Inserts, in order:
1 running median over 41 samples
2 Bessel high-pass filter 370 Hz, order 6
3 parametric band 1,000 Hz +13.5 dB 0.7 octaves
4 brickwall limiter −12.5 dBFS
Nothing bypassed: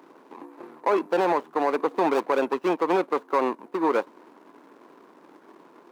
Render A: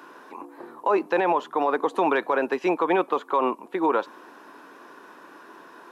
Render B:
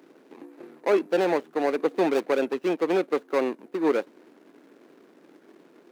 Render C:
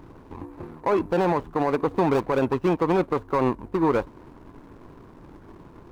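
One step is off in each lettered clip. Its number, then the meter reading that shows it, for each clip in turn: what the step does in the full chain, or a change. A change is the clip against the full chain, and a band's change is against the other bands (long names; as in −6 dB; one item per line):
1, 2 kHz band +3.5 dB
3, 1 kHz band −7.5 dB
2, 125 Hz band +18.0 dB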